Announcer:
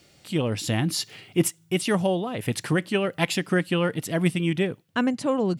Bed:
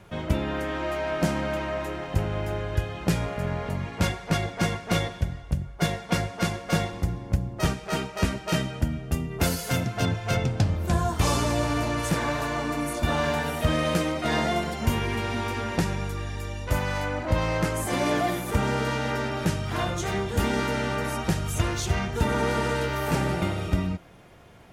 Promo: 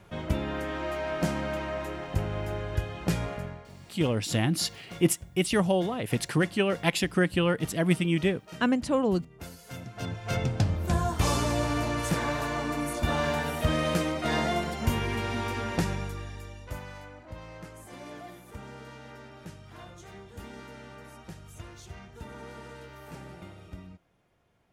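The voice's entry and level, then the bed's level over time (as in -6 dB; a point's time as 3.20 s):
3.65 s, -1.5 dB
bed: 3.34 s -3.5 dB
3.68 s -19 dB
9.56 s -19 dB
10.45 s -2.5 dB
15.92 s -2.5 dB
17.22 s -19 dB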